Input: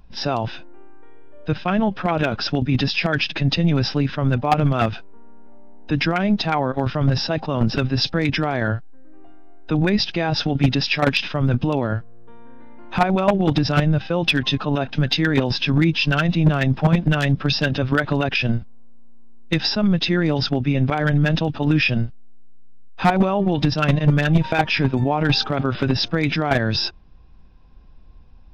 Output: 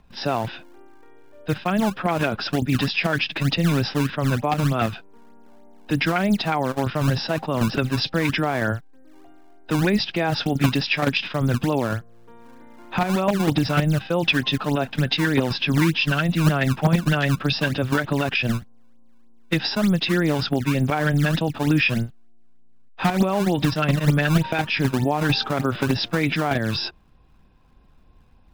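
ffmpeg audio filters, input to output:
-filter_complex "[0:a]lowpass=4.2k,lowshelf=f=79:g=-10.5,acrossover=split=360|2800[a][b][c];[a]acrusher=samples=20:mix=1:aa=0.000001:lfo=1:lforange=32:lforate=3.3[d];[b]alimiter=limit=-13dB:level=0:latency=1:release=350[e];[d][e][c]amix=inputs=3:normalize=0"

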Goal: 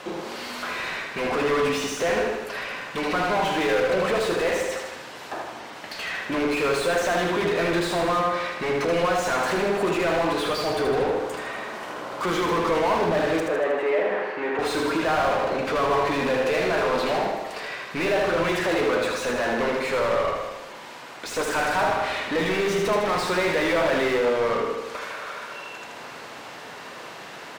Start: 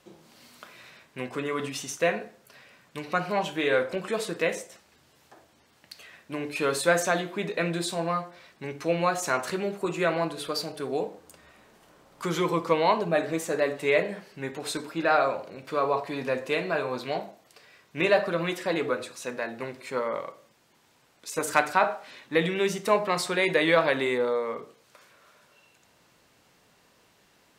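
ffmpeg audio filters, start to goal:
-filter_complex "[0:a]asoftclip=type=tanh:threshold=-21.5dB,asplit=2[a][b];[b]highpass=f=720:p=1,volume=31dB,asoftclip=type=tanh:threshold=-20.5dB[c];[a][c]amix=inputs=2:normalize=0,lowpass=f=1.6k:p=1,volume=-6dB,asettb=1/sr,asplit=3[d][e][f];[d]atrim=end=13.404[g];[e]atrim=start=13.4:end=14.59,asetpts=PTS-STARTPTS,afade=t=in:d=0.004:c=qsin,afade=t=out:st=1.186:d=0.004:c=qsin,acrossover=split=250 2600:gain=0.0708 1 0.112[h][i][j];[h][i][j]amix=inputs=3:normalize=0[k];[f]atrim=start=14.586[l];[g][k]acrossfade=d=0.004:c1=hsin:c2=qsin[m];[m][l]acrossfade=d=0.004:c1=qsin:c2=hsin,asplit=2[n][o];[o]aecho=0:1:78|156|234|312|390|468|546|624:0.562|0.332|0.196|0.115|0.0681|0.0402|0.0237|0.014[p];[n][p]amix=inputs=2:normalize=0,volume=2.5dB"

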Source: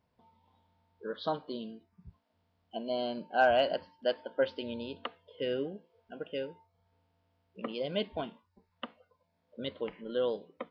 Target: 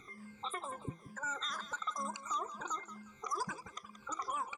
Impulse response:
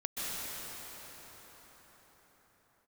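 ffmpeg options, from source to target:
-af "afftfilt=real='re*pow(10,23/40*sin(2*PI*(1.3*log(max(b,1)*sr/1024/100)/log(2)-(-0.93)*(pts-256)/sr)))':imag='im*pow(10,23/40*sin(2*PI*(1.3*log(max(b,1)*sr/1024/100)/log(2)-(-0.93)*(pts-256)/sr)))':win_size=1024:overlap=0.75,bass=f=250:g=5,treble=f=4k:g=-7,bandreject=f=70.77:t=h:w=4,bandreject=f=141.54:t=h:w=4,bandreject=f=212.31:t=h:w=4,bandreject=f=283.08:t=h:w=4,acompressor=threshold=-44dB:ratio=2.5,alimiter=level_in=12.5dB:limit=-24dB:level=0:latency=1:release=255,volume=-12.5dB,acompressor=mode=upward:threshold=-58dB:ratio=2.5,aecho=1:1:2:0.69,aecho=1:1:417|834|1251:0.224|0.0649|0.0188,asetrate=103194,aresample=44100,volume=6dB"

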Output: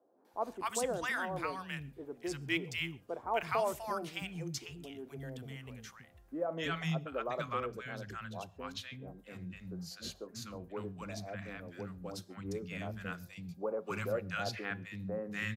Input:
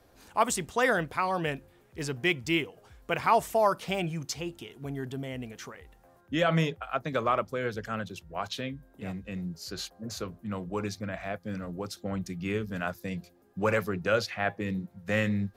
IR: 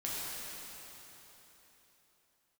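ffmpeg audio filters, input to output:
-filter_complex "[0:a]asettb=1/sr,asplit=3[a][b][c];[a]atrim=end=13.044[d];[b]atrim=start=13.04:end=13.84,asetpts=PTS-STARTPTS,afade=t=in:d=0.004:c=qsin,afade=t=out:st=0.796:d=0.004:c=qsin,equalizer=f=1.8k:t=o:w=0.35:g=-8.5[e];[c]atrim=start=13.836[f];[d][e]acrossfade=d=0.004:c1=hsin:c2=qsin[g];[g][f]acrossfade=d=0.004:c1=qsin:c2=hsin,acrossover=split=240|950[h][i][j];[j]adelay=250[k];[h]adelay=330[l];[l][i][k]amix=inputs=3:normalize=0,asplit=2[m][n];[1:a]atrim=start_sample=2205,atrim=end_sample=6615[o];[n][o]afir=irnorm=-1:irlink=0,volume=-20.5dB[p];[m][p]amix=inputs=2:normalize=0,volume=-7dB"

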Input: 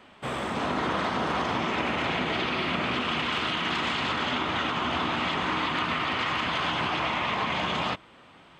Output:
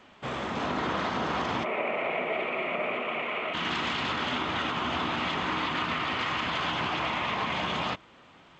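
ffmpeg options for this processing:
-filter_complex "[0:a]asplit=3[a][b][c];[a]afade=t=out:st=1.63:d=0.02[d];[b]highpass=290,equalizer=f=290:t=q:w=4:g=-7,equalizer=f=430:t=q:w=4:g=4,equalizer=f=620:t=q:w=4:g=9,equalizer=f=910:t=q:w=4:g=-4,equalizer=f=1.6k:t=q:w=4:g=-10,equalizer=f=2.3k:t=q:w=4:g=7,lowpass=f=2.4k:w=0.5412,lowpass=f=2.4k:w=1.3066,afade=t=in:st=1.63:d=0.02,afade=t=out:st=3.53:d=0.02[e];[c]afade=t=in:st=3.53:d=0.02[f];[d][e][f]amix=inputs=3:normalize=0,volume=-2dB" -ar 16000 -c:a g722

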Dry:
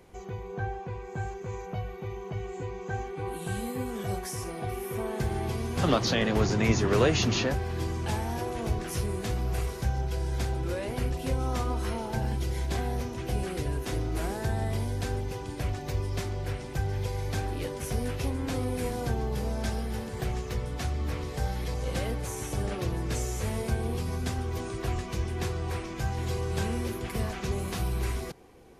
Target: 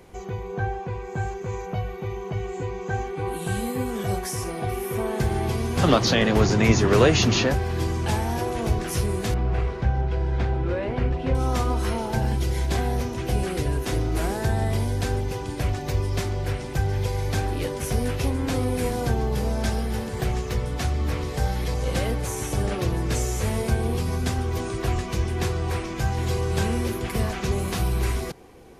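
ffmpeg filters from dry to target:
-filter_complex "[0:a]asettb=1/sr,asplit=3[a][b][c];[a]atrim=end=9.344[d];[b]atrim=start=9.34:end=11.35,asetpts=PTS-STARTPTS,afade=t=in:d=0.004:c=qsin,afade=t=out:st=2.006:d=0.004:c=qsin,lowpass=2.5k[e];[c]atrim=start=11.346[f];[d][e]acrossfade=d=0.004:c1=hsin:c2=qsin[g];[g][f]acrossfade=d=0.004:c1=qsin:c2=hsin,volume=6dB"

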